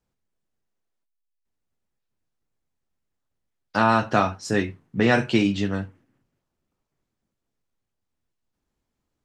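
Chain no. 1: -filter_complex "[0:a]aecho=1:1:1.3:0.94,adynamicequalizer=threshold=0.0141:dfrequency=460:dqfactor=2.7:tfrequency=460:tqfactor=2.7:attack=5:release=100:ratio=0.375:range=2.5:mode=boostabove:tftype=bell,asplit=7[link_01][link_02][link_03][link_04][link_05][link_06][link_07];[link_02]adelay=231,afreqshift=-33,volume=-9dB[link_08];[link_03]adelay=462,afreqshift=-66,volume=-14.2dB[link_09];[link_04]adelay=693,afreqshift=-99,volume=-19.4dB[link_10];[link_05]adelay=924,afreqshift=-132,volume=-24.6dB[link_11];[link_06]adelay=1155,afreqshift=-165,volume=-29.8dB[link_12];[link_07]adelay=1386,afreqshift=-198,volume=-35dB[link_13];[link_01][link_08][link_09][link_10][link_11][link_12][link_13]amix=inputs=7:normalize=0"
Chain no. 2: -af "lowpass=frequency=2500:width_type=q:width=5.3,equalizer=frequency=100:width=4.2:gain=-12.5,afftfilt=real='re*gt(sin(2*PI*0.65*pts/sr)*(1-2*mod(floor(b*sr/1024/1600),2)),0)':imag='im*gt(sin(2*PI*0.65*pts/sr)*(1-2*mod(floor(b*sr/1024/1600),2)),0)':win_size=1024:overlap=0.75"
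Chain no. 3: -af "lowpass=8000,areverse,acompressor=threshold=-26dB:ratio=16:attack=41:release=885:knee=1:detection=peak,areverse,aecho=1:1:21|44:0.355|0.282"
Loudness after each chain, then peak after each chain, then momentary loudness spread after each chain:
−19.5, −23.0, −30.5 LKFS; −2.5, −3.5, −11.5 dBFS; 14, 11, 6 LU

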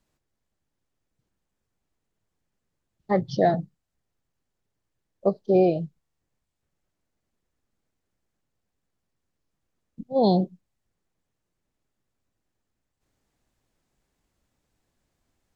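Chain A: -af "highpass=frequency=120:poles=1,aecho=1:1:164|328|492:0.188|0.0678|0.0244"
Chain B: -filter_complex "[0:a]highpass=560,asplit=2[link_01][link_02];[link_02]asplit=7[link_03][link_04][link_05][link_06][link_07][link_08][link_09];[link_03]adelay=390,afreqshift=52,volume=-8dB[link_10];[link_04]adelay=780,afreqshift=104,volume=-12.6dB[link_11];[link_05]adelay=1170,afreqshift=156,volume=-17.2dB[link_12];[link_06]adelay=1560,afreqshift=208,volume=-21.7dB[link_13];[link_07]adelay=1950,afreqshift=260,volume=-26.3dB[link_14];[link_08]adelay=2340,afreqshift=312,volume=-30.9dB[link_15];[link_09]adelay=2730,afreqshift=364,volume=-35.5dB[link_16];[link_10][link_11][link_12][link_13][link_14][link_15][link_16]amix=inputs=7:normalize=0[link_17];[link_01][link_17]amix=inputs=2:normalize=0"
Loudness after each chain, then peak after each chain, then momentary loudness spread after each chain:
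−24.5, −31.5 LKFS; −8.0, −13.0 dBFS; 16, 21 LU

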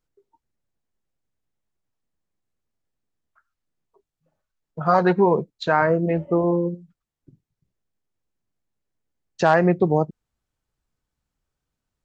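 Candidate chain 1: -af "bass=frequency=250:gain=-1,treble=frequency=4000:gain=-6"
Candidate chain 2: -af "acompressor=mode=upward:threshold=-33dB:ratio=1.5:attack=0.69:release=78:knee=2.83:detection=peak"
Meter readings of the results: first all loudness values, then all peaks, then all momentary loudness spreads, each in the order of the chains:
−21.0, −20.5 LKFS; −5.0, −4.5 dBFS; 9, 9 LU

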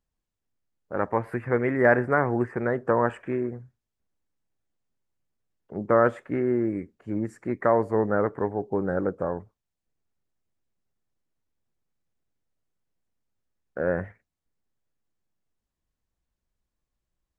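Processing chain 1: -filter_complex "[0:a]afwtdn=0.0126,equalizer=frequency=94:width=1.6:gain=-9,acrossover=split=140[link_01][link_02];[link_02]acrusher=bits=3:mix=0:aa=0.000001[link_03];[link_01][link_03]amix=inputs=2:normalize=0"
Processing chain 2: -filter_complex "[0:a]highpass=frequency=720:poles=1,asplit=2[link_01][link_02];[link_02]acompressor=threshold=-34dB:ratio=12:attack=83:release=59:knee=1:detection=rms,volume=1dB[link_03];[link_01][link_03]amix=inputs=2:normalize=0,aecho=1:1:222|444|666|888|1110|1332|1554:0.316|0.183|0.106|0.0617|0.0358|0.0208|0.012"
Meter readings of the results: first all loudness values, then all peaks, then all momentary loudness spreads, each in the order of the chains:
−25.0, −26.0 LKFS; −7.0, −6.0 dBFS; 13, 18 LU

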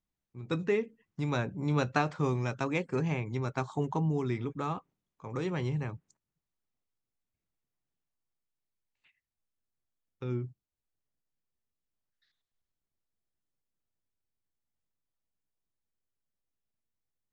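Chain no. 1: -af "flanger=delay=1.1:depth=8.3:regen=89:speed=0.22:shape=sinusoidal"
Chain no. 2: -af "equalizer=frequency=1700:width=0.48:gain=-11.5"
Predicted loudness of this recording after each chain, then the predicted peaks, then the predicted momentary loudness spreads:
−38.0, −35.0 LKFS; −18.5, −20.0 dBFS; 11, 12 LU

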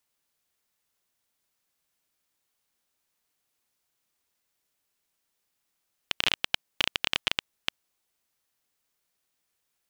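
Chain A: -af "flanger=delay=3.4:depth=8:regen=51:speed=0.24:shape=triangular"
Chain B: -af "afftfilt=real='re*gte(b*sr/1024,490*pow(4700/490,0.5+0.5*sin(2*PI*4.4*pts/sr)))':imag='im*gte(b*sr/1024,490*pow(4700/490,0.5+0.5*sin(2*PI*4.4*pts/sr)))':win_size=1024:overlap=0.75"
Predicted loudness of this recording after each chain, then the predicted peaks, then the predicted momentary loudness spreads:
−33.5, −30.5 LKFS; −9.5, −5.5 dBFS; 10, 9 LU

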